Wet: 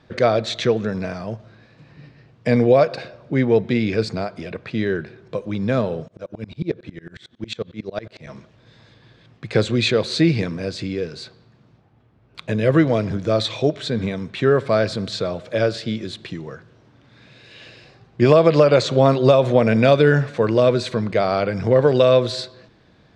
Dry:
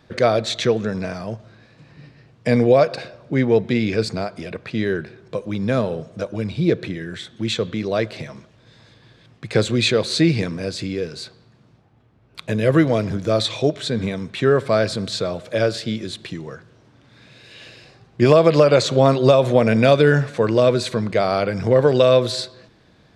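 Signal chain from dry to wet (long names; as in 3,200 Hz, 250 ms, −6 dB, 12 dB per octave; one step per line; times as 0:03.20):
high-frequency loss of the air 64 metres
0:06.08–0:08.27: tremolo with a ramp in dB swelling 11 Hz, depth 27 dB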